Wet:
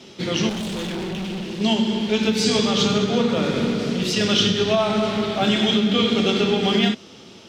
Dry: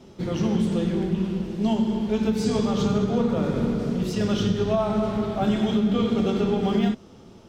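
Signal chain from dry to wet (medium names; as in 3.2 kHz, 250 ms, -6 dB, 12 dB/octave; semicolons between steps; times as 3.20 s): frequency weighting D; 0.49–1.61 s: hard clipper -29.5 dBFS, distortion -15 dB; trim +4 dB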